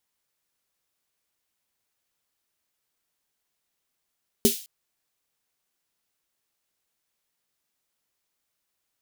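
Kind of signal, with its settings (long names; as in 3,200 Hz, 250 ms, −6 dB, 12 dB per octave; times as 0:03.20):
synth snare length 0.21 s, tones 230 Hz, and 400 Hz, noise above 2,800 Hz, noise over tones −5.5 dB, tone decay 0.13 s, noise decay 0.42 s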